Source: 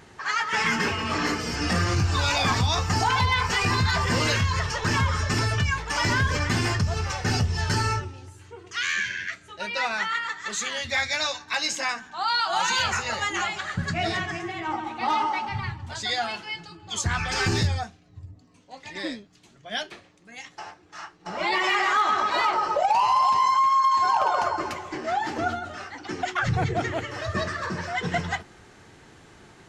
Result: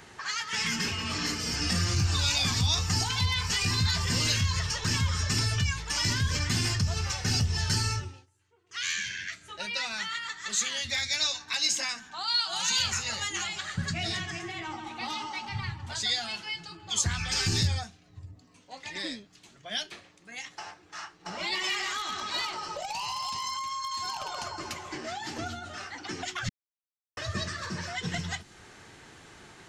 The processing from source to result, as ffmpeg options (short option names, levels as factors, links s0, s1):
-filter_complex "[0:a]asplit=5[s0][s1][s2][s3][s4];[s0]atrim=end=8.26,asetpts=PTS-STARTPTS,afade=t=out:st=8.06:d=0.2:silence=0.0707946[s5];[s1]atrim=start=8.26:end=8.68,asetpts=PTS-STARTPTS,volume=0.0708[s6];[s2]atrim=start=8.68:end=26.49,asetpts=PTS-STARTPTS,afade=t=in:d=0.2:silence=0.0707946,afade=t=out:st=17.806:d=0.004:c=hsin[s7];[s3]atrim=start=26.49:end=27.17,asetpts=PTS-STARTPTS,volume=0[s8];[s4]atrim=start=27.17,asetpts=PTS-STARTPTS,afade=t=in:d=0.004:c=hsin[s9];[s5][s6][s7][s8][s9]concat=n=5:v=0:a=1,tiltshelf=f=970:g=-3,acrossover=split=260|3000[s10][s11][s12];[s11]acompressor=threshold=0.0112:ratio=4[s13];[s10][s13][s12]amix=inputs=3:normalize=0"